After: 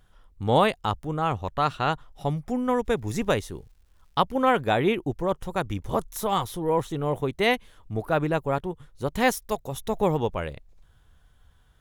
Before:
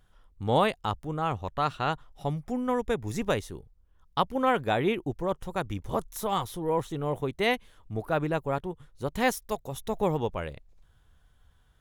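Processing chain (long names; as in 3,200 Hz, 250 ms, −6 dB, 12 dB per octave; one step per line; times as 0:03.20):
0:02.84–0:04.20: surface crackle 450 per second −61 dBFS
level +3.5 dB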